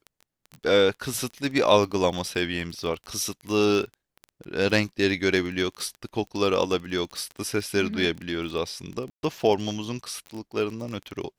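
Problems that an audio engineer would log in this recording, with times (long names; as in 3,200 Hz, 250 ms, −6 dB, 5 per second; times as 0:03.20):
surface crackle 17 per second −30 dBFS
0:09.10–0:09.23: drop-out 131 ms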